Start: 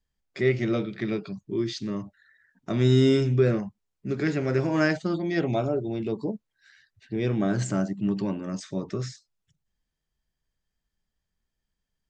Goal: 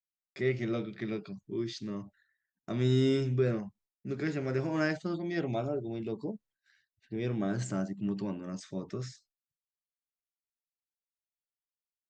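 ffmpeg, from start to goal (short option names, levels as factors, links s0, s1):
-af "agate=range=0.0224:threshold=0.00282:ratio=3:detection=peak,volume=0.447"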